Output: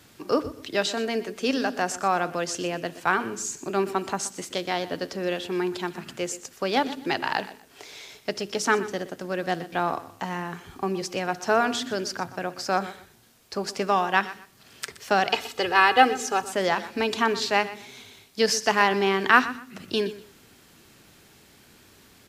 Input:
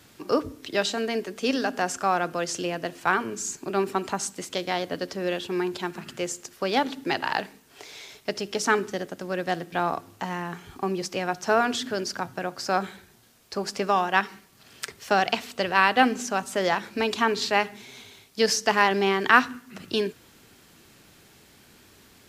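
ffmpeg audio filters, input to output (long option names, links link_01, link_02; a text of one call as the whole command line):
ffmpeg -i in.wav -filter_complex "[0:a]asettb=1/sr,asplit=3[link_01][link_02][link_03];[link_01]atrim=end=15.324[link_04];[link_02]atrim=start=15.32:end=16.48,asetpts=PTS-STARTPTS,afade=type=in:duration=0.004:curve=qsin,afade=type=out:start_time=1.156:duration=0.004:curve=qsin,aecho=1:1:2.4:0.72,atrim=end_sample=51156[link_05];[link_03]atrim=start=16.476[link_06];[link_04][link_05]acrossfade=duration=0.004:curve1=hsin:curve2=qsin[link_07];[link_07][link_06]acrossfade=duration=0.004:curve1=qsin:curve2=hsin,asplit=2[link_08][link_09];[link_09]aecho=0:1:123|246:0.158|0.038[link_10];[link_08][link_10]amix=inputs=2:normalize=0" out.wav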